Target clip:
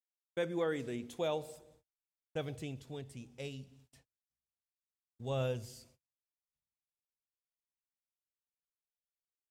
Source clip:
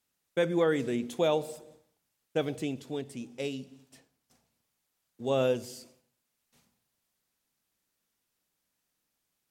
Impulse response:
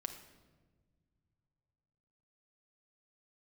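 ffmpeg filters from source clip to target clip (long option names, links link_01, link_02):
-af "agate=range=-30dB:threshold=-59dB:ratio=16:detection=peak,asubboost=boost=11:cutoff=89,volume=-7.5dB"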